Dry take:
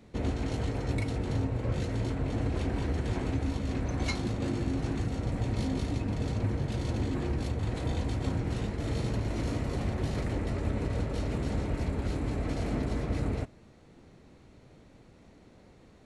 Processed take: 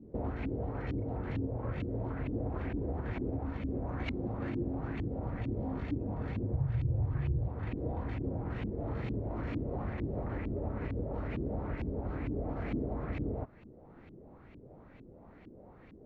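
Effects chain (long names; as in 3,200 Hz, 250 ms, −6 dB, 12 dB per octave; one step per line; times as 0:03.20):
0:06.53–0:07.48: low shelf with overshoot 170 Hz +8.5 dB, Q 3
downward compressor 2 to 1, threshold −38 dBFS, peak gain reduction 12.5 dB
auto-filter low-pass saw up 2.2 Hz 270–2,700 Hz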